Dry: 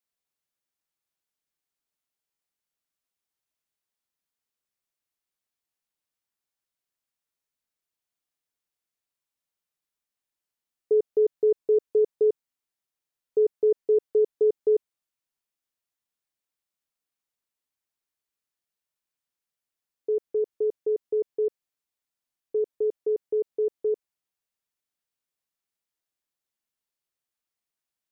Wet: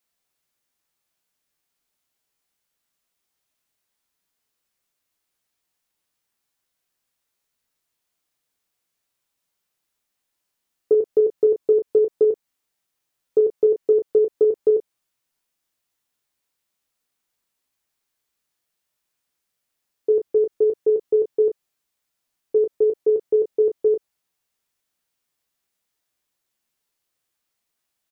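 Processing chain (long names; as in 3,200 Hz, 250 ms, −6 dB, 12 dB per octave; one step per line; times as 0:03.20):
downward compressor, threshold −23 dBFS, peak gain reduction 5.5 dB
ambience of single reflections 16 ms −7.5 dB, 34 ms −8.5 dB
level +8.5 dB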